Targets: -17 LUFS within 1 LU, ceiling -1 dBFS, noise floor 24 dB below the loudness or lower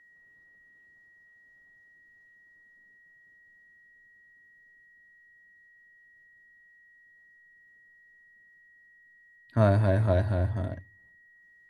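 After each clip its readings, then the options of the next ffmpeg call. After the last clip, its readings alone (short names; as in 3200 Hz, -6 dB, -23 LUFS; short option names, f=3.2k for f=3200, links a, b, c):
steady tone 1900 Hz; tone level -56 dBFS; loudness -26.5 LUFS; peak -8.0 dBFS; loudness target -17.0 LUFS
-> -af "bandreject=f=1.9k:w=30"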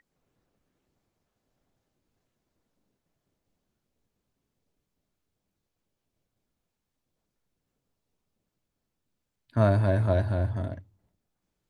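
steady tone none; loudness -26.0 LUFS; peak -8.5 dBFS; loudness target -17.0 LUFS
-> -af "volume=9dB,alimiter=limit=-1dB:level=0:latency=1"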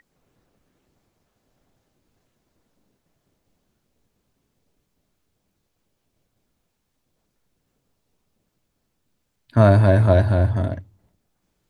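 loudness -17.5 LUFS; peak -1.0 dBFS; noise floor -74 dBFS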